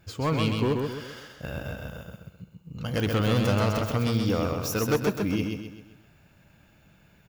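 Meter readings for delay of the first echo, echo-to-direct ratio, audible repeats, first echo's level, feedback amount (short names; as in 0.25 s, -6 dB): 0.13 s, -3.0 dB, 5, -4.0 dB, 43%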